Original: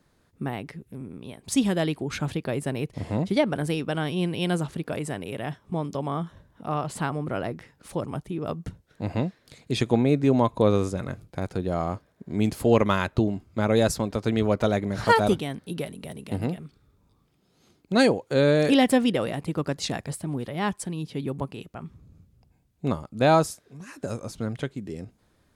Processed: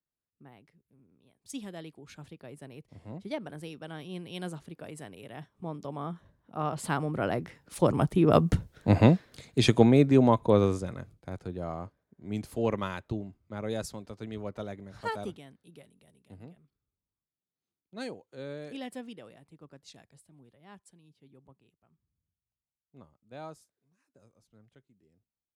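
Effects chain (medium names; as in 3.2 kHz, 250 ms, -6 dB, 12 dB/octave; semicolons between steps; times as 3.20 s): Doppler pass-by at 8.52 s, 6 m/s, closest 3 m; three bands expanded up and down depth 40%; trim +7 dB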